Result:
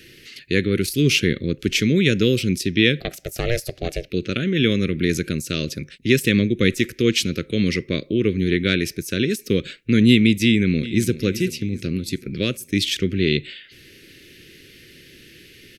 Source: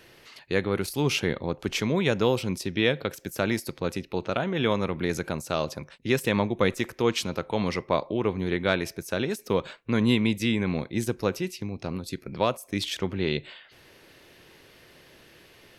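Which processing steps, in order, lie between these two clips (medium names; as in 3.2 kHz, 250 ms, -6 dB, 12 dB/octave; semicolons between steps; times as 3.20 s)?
Chebyshev band-stop 350–2100 Hz, order 2; 3.00–4.10 s: ring modulator 240 Hz; 10.45–11.17 s: echo throw 380 ms, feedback 50%, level -14.5 dB; trim +9 dB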